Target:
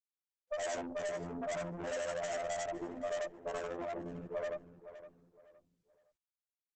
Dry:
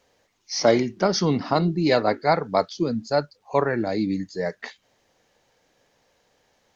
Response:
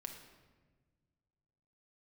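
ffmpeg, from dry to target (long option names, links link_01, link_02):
-filter_complex "[0:a]afftfilt=real='re':imag='-im':win_size=8192:overlap=0.75,afftfilt=real='re*gte(hypot(re,im),0.126)':imag='im*gte(hypot(re,im),0.126)':win_size=1024:overlap=0.75,superequalizer=8b=2.82:10b=2.51:11b=0.501:13b=0.355:14b=0.398,afftfilt=real='hypot(re,im)*cos(PI*b)':imag='0':win_size=2048:overlap=0.75,aeval=exprs='(tanh(50.1*val(0)+0.5)-tanh(0.5))/50.1':channel_layout=same,acompressor=threshold=-39dB:ratio=8,aexciter=amount=12.1:drive=3.5:freq=6400,asplit=2[link_01][link_02];[link_02]adelay=514,lowpass=frequency=2900:poles=1,volume=-12.5dB,asplit=2[link_03][link_04];[link_04]adelay=514,lowpass=frequency=2900:poles=1,volume=0.29,asplit=2[link_05][link_06];[link_06]adelay=514,lowpass=frequency=2900:poles=1,volume=0.29[link_07];[link_03][link_05][link_07]amix=inputs=3:normalize=0[link_08];[link_01][link_08]amix=inputs=2:normalize=0,aresample=22050,aresample=44100,lowshelf=frequency=250:gain=-8.5,volume=6dB" -ar 48000 -c:a libopus -b:a 12k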